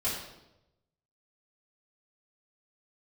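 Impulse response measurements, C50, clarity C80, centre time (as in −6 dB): 2.5 dB, 5.5 dB, 52 ms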